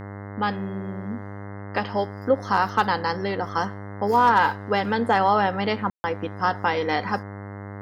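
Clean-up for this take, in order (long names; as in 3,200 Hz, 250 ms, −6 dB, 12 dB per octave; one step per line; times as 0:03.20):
clipped peaks rebuilt −9 dBFS
hum removal 100.4 Hz, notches 21
ambience match 0:05.90–0:06.04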